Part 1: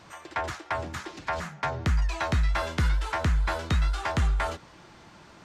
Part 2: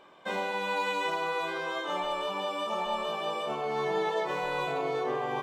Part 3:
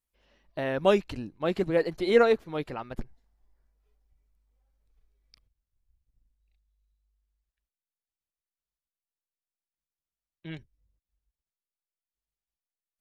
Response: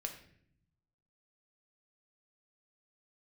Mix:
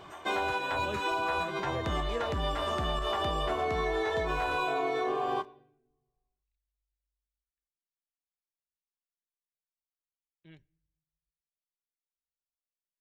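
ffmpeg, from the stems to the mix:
-filter_complex "[0:a]equalizer=frequency=4600:width=0.32:gain=-8,aeval=exprs='0.158*(cos(1*acos(clip(val(0)/0.158,-1,1)))-cos(1*PI/2))+0.0447*(cos(5*acos(clip(val(0)/0.158,-1,1)))-cos(5*PI/2))':channel_layout=same,volume=-9dB[link_01];[1:a]aecho=1:1:2.8:0.87,volume=1.5dB,asplit=2[link_02][link_03];[link_03]volume=-10.5dB[link_04];[2:a]volume=-15.5dB,asplit=3[link_05][link_06][link_07];[link_06]volume=-18dB[link_08];[link_07]apad=whole_len=239378[link_09];[link_02][link_09]sidechaincompress=threshold=-53dB:ratio=8:attack=45:release=126[link_10];[3:a]atrim=start_sample=2205[link_11];[link_04][link_08]amix=inputs=2:normalize=0[link_12];[link_12][link_11]afir=irnorm=-1:irlink=0[link_13];[link_01][link_10][link_05][link_13]amix=inputs=4:normalize=0,acompressor=threshold=-27dB:ratio=6"

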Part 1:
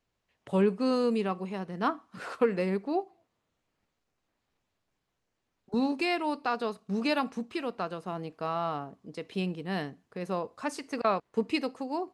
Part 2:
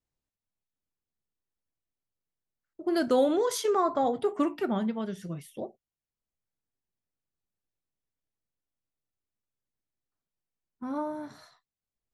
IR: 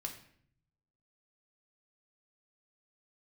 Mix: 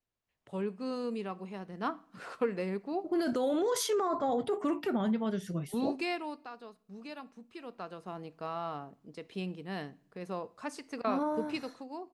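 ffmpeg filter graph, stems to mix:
-filter_complex "[0:a]volume=-1dB,afade=type=out:start_time=6.09:duration=0.41:silence=0.266073,afade=type=in:start_time=7.42:duration=0.68:silence=0.281838,asplit=2[link_01][link_02];[link_02]volume=-13.5dB[link_03];[1:a]alimiter=level_in=1dB:limit=-24dB:level=0:latency=1:release=13,volume=-1dB,adelay=250,volume=-4dB[link_04];[2:a]atrim=start_sample=2205[link_05];[link_03][link_05]afir=irnorm=-1:irlink=0[link_06];[link_01][link_04][link_06]amix=inputs=3:normalize=0,dynaudnorm=framelen=360:gausssize=7:maxgain=5.5dB"

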